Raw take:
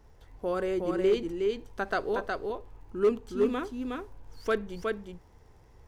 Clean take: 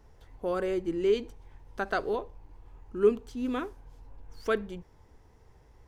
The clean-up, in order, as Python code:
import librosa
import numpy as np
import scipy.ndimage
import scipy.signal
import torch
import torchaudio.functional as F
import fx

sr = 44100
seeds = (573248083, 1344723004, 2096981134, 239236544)

y = fx.fix_declip(x, sr, threshold_db=-17.5)
y = fx.fix_declick_ar(y, sr, threshold=6.5)
y = fx.fix_echo_inverse(y, sr, delay_ms=365, level_db=-3.5)